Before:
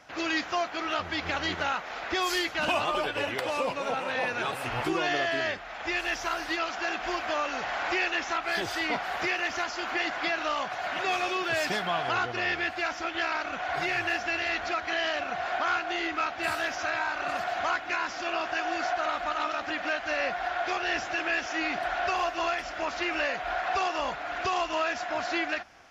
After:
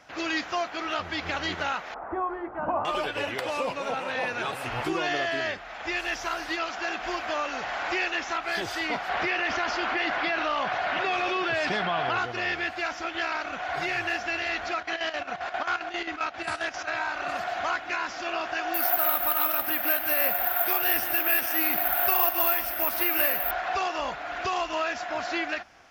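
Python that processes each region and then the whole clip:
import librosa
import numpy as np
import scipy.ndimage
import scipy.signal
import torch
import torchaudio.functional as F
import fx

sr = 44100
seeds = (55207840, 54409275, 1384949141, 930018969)

y = fx.chain(x, sr, fx.lowpass(hz=1200.0, slope=24),
    fx.peak_eq(hz=950.0, db=3.5, octaves=0.78),
    fx.hum_notches(base_hz=60, count=10), at=(1.94, 2.85))
y = fx.chain(y, sr, fx.lowpass(hz=4100.0, slope=12),
    fx.env_flatten(amount_pct=70), at=(9.09, 12.18))
y = fx.chain(y, sr, fx.chopper(hz=7.5, depth_pct=65, duty_pct=65),
    fx.brickwall_lowpass(high_hz=11000.0), at=(14.74, 16.91))
y = fx.chain(y, sr, fx.resample_bad(factor=3, down='filtered', up='zero_stuff'),
    fx.echo_single(ms=149, db=-12.0), at=(18.74, 23.51))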